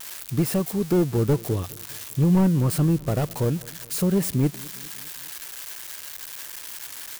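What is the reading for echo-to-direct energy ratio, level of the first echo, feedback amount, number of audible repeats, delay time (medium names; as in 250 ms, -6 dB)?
-21.0 dB, -22.5 dB, 57%, 3, 203 ms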